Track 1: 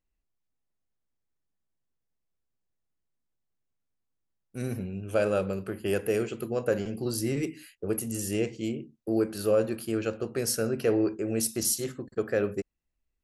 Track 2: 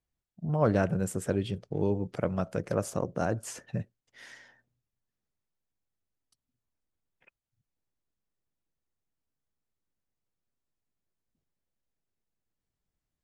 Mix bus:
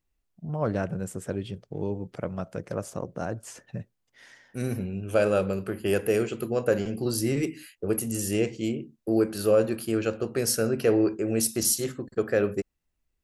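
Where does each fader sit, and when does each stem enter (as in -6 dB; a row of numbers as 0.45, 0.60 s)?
+3.0, -2.5 dB; 0.00, 0.00 s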